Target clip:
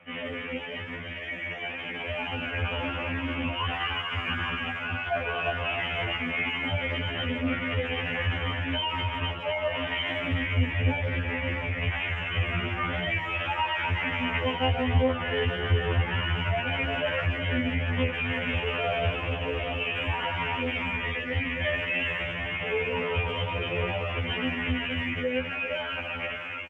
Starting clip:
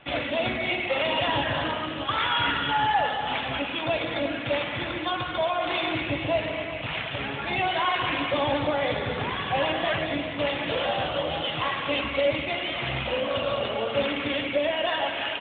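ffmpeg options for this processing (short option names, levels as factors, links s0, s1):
-filter_complex "[0:a]asubboost=boost=5:cutoff=110,acrossover=split=160|410|1900[s0][s1][s2][s3];[s3]acontrast=29[s4];[s0][s1][s2][s4]amix=inputs=4:normalize=0,alimiter=limit=0.0944:level=0:latency=1:release=79,asetrate=25442,aresample=44100,asplit=2[s5][s6];[s6]adelay=150,highpass=300,lowpass=3400,asoftclip=type=hard:threshold=0.0316,volume=0.0708[s7];[s5][s7]amix=inputs=2:normalize=0,dynaudnorm=f=980:g=5:m=2,highpass=65,asetrate=66075,aresample=44100,atempo=0.66742,lowshelf=f=210:g=10,afftfilt=real='re*2*eq(mod(b,4),0)':imag='im*2*eq(mod(b,4),0)':win_size=2048:overlap=0.75,volume=0.668"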